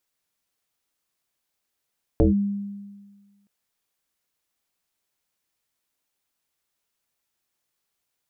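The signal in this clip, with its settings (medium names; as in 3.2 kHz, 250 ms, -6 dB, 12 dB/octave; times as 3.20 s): FM tone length 1.27 s, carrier 201 Hz, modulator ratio 0.6, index 2.9, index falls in 0.14 s linear, decay 1.51 s, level -12 dB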